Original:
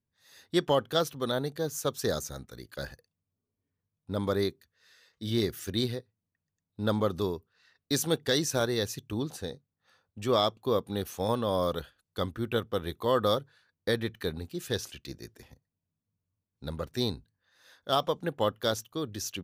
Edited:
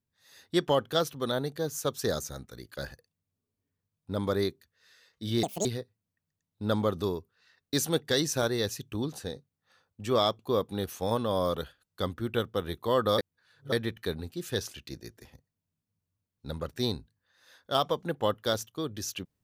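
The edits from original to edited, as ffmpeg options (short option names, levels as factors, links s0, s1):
-filter_complex "[0:a]asplit=5[s0][s1][s2][s3][s4];[s0]atrim=end=5.434[s5];[s1]atrim=start=5.43:end=5.83,asetpts=PTS-STARTPTS,asetrate=79380,aresample=44100[s6];[s2]atrim=start=5.826:end=13.362[s7];[s3]atrim=start=13.358:end=13.902,asetpts=PTS-STARTPTS,areverse[s8];[s4]atrim=start=13.898[s9];[s5][s6]acrossfade=d=0.004:c1=hsin:c2=hsin[s10];[s10][s7]acrossfade=d=0.004:c1=hsin:c2=hsin[s11];[s11][s8]acrossfade=d=0.004:c1=hsin:c2=hsin[s12];[s12][s9]acrossfade=d=0.004:c1=hsin:c2=hsin"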